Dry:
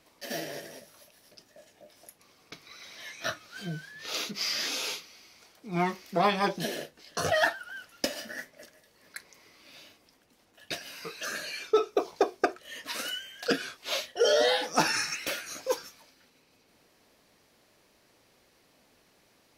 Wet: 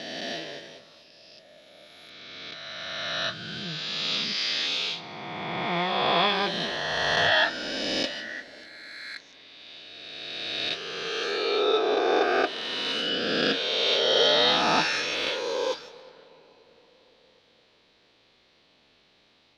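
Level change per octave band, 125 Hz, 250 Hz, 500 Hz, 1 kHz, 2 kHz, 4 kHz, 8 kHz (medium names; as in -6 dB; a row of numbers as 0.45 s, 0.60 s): +0.5 dB, +3.0 dB, +3.0 dB, +4.0 dB, +5.5 dB, +9.5 dB, -4.0 dB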